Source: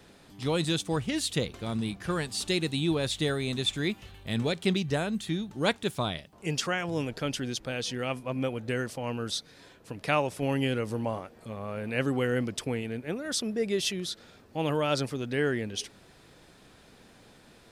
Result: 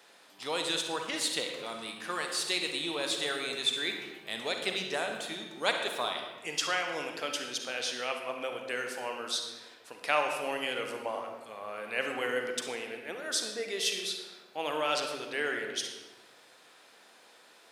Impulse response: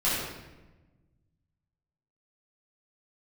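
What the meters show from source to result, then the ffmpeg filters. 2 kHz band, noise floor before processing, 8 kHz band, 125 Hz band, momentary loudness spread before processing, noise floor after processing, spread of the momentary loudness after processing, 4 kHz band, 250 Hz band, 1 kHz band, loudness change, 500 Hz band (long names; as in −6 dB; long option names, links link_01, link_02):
+1.5 dB, −56 dBFS, +1.0 dB, −22.5 dB, 7 LU, −58 dBFS, 9 LU, +1.5 dB, −12.5 dB, +0.5 dB, −2.5 dB, −4.0 dB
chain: -filter_complex "[0:a]highpass=630,asplit=2[link_01][link_02];[1:a]atrim=start_sample=2205,adelay=40[link_03];[link_02][link_03]afir=irnorm=-1:irlink=0,volume=-15.5dB[link_04];[link_01][link_04]amix=inputs=2:normalize=0"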